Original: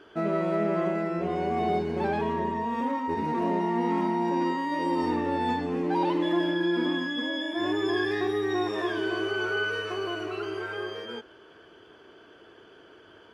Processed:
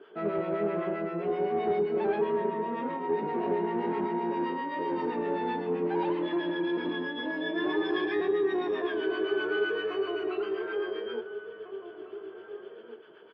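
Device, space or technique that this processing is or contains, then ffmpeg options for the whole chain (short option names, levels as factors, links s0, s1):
guitar amplifier with harmonic tremolo: -filter_complex "[0:a]highpass=f=160:w=0.5412,highpass=f=160:w=1.3066,acrossover=split=860[s0][s1];[s0]aeval=exprs='val(0)*(1-0.7/2+0.7/2*cos(2*PI*7.7*n/s))':c=same[s2];[s1]aeval=exprs='val(0)*(1-0.7/2-0.7/2*cos(2*PI*7.7*n/s))':c=same[s3];[s2][s3]amix=inputs=2:normalize=0,asoftclip=type=tanh:threshold=0.0631,highpass=89,equalizer=f=91:t=q:w=4:g=5,equalizer=f=290:t=q:w=4:g=-5,equalizer=f=420:t=q:w=4:g=9,lowpass=f=3500:w=0.5412,lowpass=f=3500:w=1.3066,asettb=1/sr,asplit=3[s4][s5][s6];[s4]atrim=end=7.254[s7];[s5]atrim=start=7.25:end=8.2,asetpts=PTS-STARTPTS,afade=t=in:d=0.004:c=qsin,afade=t=out:st=0.946:d=0.004:c=qsin,aecho=1:1:6.4:0.89,atrim=end_sample=41895[s8];[s6]atrim=start=8.196[s9];[s7][s8]acrossfade=d=0.004:c1=hsin:c2=qsin[s10];[s10][s9]acrossfade=d=0.004:c1=qsin:c2=hsin,asplit=2[s11][s12];[s12]adelay=1749,volume=0.355,highshelf=f=4000:g=-39.4[s13];[s11][s13]amix=inputs=2:normalize=0"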